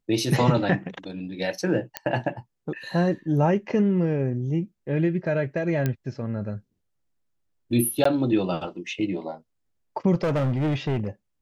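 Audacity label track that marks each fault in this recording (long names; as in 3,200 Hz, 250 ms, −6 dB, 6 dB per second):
1.970000	1.970000	click −10 dBFS
5.860000	5.860000	click −12 dBFS
8.040000	8.050000	drop-out 14 ms
10.140000	11.070000	clipping −20.5 dBFS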